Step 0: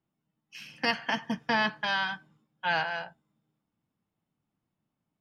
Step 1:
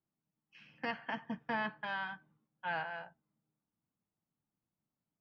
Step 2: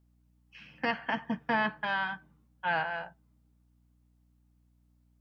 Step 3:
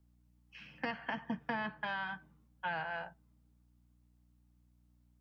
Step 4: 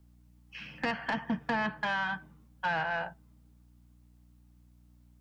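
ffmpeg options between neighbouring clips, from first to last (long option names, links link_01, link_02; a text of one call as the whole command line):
ffmpeg -i in.wav -af "lowpass=2200,volume=-8.5dB" out.wav
ffmpeg -i in.wav -af "aeval=exprs='val(0)+0.000224*(sin(2*PI*60*n/s)+sin(2*PI*2*60*n/s)/2+sin(2*PI*3*60*n/s)/3+sin(2*PI*4*60*n/s)/4+sin(2*PI*5*60*n/s)/5)':channel_layout=same,volume=7.5dB" out.wav
ffmpeg -i in.wav -filter_complex "[0:a]acrossover=split=140[link_01][link_02];[link_02]acompressor=threshold=-33dB:ratio=5[link_03];[link_01][link_03]amix=inputs=2:normalize=0,volume=-1.5dB" out.wav
ffmpeg -i in.wav -af "asoftclip=type=tanh:threshold=-31dB,volume=8.5dB" out.wav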